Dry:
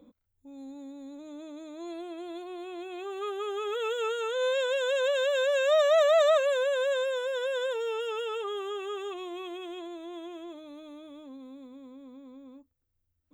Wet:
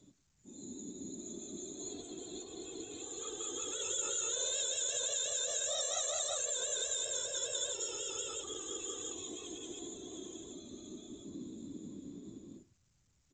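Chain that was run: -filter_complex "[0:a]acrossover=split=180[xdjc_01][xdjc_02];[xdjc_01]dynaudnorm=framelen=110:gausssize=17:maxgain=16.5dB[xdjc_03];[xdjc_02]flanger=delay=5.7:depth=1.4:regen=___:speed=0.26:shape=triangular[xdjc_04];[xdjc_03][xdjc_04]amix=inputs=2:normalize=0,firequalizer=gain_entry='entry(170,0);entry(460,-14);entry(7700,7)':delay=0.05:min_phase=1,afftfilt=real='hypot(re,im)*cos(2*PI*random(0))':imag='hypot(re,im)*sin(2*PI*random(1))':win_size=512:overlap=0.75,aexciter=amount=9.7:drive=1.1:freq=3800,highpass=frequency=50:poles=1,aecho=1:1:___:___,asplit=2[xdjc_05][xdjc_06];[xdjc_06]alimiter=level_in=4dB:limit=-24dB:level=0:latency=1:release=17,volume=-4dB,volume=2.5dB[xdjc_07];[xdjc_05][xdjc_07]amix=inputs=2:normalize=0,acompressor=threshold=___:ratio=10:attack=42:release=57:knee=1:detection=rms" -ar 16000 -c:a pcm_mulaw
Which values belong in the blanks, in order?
-77, 109, 0.0631, -34dB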